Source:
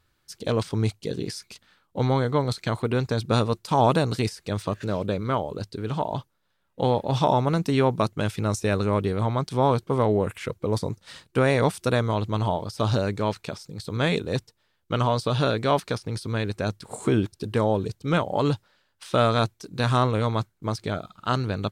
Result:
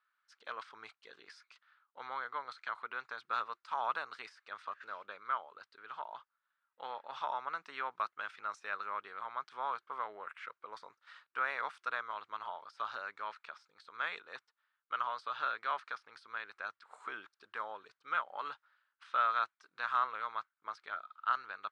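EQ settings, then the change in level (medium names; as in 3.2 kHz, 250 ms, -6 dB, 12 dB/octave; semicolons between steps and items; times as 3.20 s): ladder band-pass 1.5 kHz, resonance 55%; +1.0 dB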